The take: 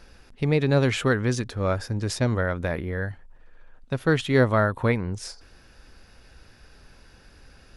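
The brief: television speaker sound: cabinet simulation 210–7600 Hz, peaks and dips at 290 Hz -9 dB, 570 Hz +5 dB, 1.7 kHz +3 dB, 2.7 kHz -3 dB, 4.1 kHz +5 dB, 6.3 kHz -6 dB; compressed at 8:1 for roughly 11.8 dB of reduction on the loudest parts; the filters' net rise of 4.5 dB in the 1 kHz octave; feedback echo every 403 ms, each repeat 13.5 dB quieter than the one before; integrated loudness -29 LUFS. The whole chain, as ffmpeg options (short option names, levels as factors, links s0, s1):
-af "equalizer=f=1000:t=o:g=5.5,acompressor=threshold=0.0501:ratio=8,highpass=f=210:w=0.5412,highpass=f=210:w=1.3066,equalizer=f=290:t=q:w=4:g=-9,equalizer=f=570:t=q:w=4:g=5,equalizer=f=1700:t=q:w=4:g=3,equalizer=f=2700:t=q:w=4:g=-3,equalizer=f=4100:t=q:w=4:g=5,equalizer=f=6300:t=q:w=4:g=-6,lowpass=f=7600:w=0.5412,lowpass=f=7600:w=1.3066,aecho=1:1:403|806:0.211|0.0444,volume=1.5"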